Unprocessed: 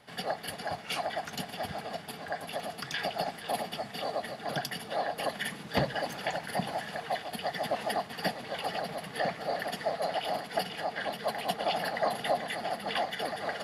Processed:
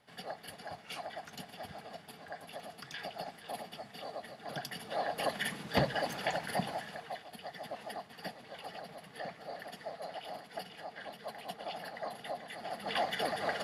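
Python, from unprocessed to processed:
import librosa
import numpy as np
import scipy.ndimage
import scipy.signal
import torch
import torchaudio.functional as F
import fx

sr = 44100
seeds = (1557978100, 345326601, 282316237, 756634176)

y = fx.gain(x, sr, db=fx.line((4.35, -9.5), (5.23, -1.0), (6.52, -1.0), (7.25, -11.5), (12.46, -11.5), (13.09, 0.0)))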